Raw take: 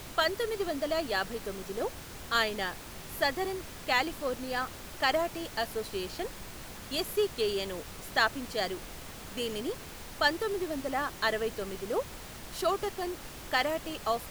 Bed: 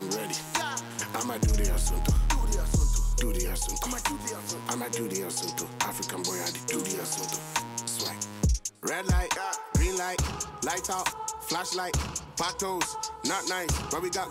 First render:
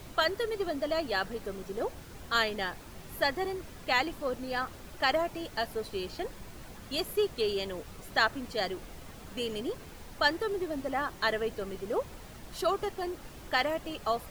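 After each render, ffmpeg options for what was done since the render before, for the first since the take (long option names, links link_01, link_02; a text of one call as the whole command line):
ffmpeg -i in.wav -af "afftdn=noise_reduction=7:noise_floor=-45" out.wav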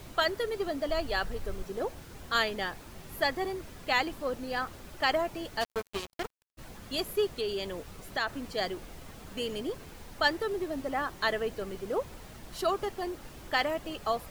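ffmpeg -i in.wav -filter_complex "[0:a]asplit=3[link_01][link_02][link_03];[link_01]afade=type=out:start_time=0.87:duration=0.02[link_04];[link_02]asubboost=boost=10:cutoff=85,afade=type=in:start_time=0.87:duration=0.02,afade=type=out:start_time=1.62:duration=0.02[link_05];[link_03]afade=type=in:start_time=1.62:duration=0.02[link_06];[link_04][link_05][link_06]amix=inputs=3:normalize=0,asplit=3[link_07][link_08][link_09];[link_07]afade=type=out:start_time=5.6:duration=0.02[link_10];[link_08]acrusher=bits=4:mix=0:aa=0.5,afade=type=in:start_time=5.6:duration=0.02,afade=type=out:start_time=6.57:duration=0.02[link_11];[link_09]afade=type=in:start_time=6.57:duration=0.02[link_12];[link_10][link_11][link_12]amix=inputs=3:normalize=0,asplit=3[link_13][link_14][link_15];[link_13]afade=type=out:start_time=7.32:duration=0.02[link_16];[link_14]acompressor=threshold=-30dB:ratio=2:attack=3.2:release=140:knee=1:detection=peak,afade=type=in:start_time=7.32:duration=0.02,afade=type=out:start_time=8.27:duration=0.02[link_17];[link_15]afade=type=in:start_time=8.27:duration=0.02[link_18];[link_16][link_17][link_18]amix=inputs=3:normalize=0" out.wav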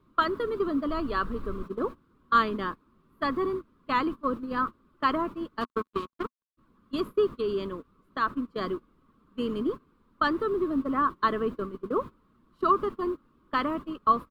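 ffmpeg -i in.wav -af "agate=range=-21dB:threshold=-36dB:ratio=16:detection=peak,firequalizer=gain_entry='entry(110,0);entry(170,6);entry(240,12);entry(760,-11);entry(1100,14);entry(1800,-6);entry(3700,-6);entry(6000,-17);entry(9000,-14)':delay=0.05:min_phase=1" out.wav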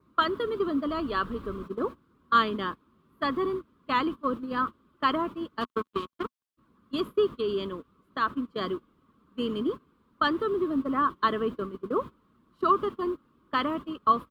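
ffmpeg -i in.wav -af "highpass=55,adynamicequalizer=threshold=0.002:dfrequency=3200:dqfactor=4.4:tfrequency=3200:tqfactor=4.4:attack=5:release=100:ratio=0.375:range=3.5:mode=boostabove:tftype=bell" out.wav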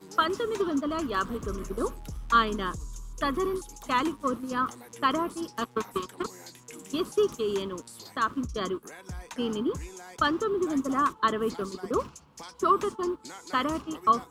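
ffmpeg -i in.wav -i bed.wav -filter_complex "[1:a]volume=-14.5dB[link_01];[0:a][link_01]amix=inputs=2:normalize=0" out.wav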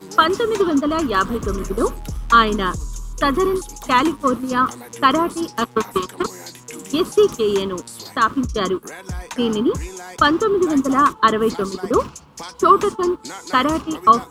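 ffmpeg -i in.wav -af "volume=10.5dB,alimiter=limit=-1dB:level=0:latency=1" out.wav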